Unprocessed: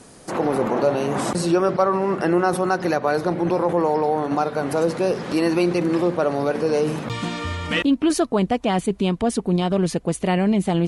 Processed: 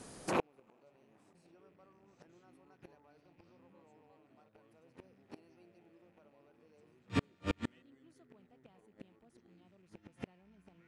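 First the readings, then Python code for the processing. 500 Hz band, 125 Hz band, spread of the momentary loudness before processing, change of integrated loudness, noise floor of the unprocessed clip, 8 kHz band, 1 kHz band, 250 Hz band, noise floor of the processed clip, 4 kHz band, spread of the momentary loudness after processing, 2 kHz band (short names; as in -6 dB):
-28.5 dB, -23.5 dB, 4 LU, -18.5 dB, -44 dBFS, -24.5 dB, -25.5 dB, -26.0 dB, -70 dBFS, -23.0 dB, 23 LU, -22.0 dB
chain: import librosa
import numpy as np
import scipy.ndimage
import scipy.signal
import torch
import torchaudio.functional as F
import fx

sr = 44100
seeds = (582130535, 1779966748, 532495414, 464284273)

y = fx.rattle_buzz(x, sr, strikes_db=-33.0, level_db=-23.0)
y = fx.echo_pitch(y, sr, ms=490, semitones=-5, count=2, db_per_echo=-3.0)
y = fx.gate_flip(y, sr, shuts_db=-12.0, range_db=-40)
y = F.gain(torch.from_numpy(y), -6.5).numpy()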